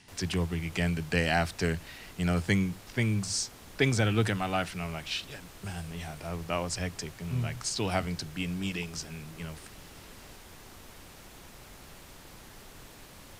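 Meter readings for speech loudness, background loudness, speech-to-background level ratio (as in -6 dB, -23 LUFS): -31.5 LUFS, -49.5 LUFS, 18.0 dB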